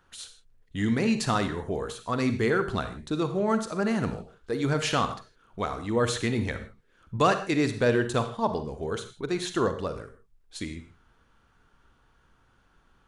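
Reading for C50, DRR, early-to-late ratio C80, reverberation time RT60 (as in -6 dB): 10.5 dB, 8.5 dB, 13.0 dB, not exponential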